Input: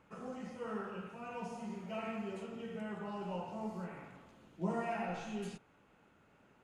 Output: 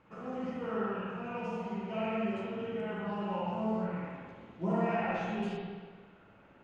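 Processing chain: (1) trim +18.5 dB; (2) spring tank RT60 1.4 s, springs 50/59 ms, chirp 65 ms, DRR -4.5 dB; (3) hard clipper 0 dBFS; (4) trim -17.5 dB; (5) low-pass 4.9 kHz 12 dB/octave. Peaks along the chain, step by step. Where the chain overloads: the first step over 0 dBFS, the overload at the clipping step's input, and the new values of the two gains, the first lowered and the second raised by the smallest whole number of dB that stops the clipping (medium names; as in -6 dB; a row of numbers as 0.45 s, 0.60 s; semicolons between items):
-5.5 dBFS, -2.0 dBFS, -2.0 dBFS, -19.5 dBFS, -19.5 dBFS; nothing clips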